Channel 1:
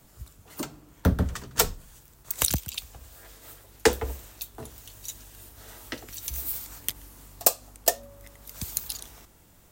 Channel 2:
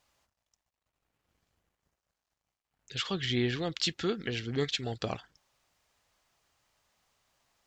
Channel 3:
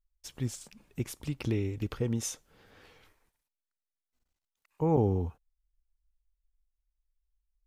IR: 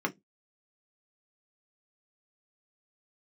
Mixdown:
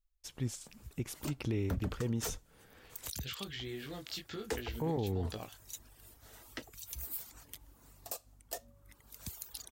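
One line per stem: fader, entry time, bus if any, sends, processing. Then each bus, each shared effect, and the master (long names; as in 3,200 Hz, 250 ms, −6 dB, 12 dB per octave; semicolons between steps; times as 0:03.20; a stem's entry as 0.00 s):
−8.0 dB, 0.65 s, no send, reverb reduction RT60 0.69 s
−2.0 dB, 0.30 s, no send, downward compressor, threshold −34 dBFS, peak gain reduction 9.5 dB; chorus effect 1.2 Hz, delay 18.5 ms, depth 3.6 ms
−2.0 dB, 0.00 s, no send, no processing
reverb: not used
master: brickwall limiter −25.5 dBFS, peak gain reduction 15.5 dB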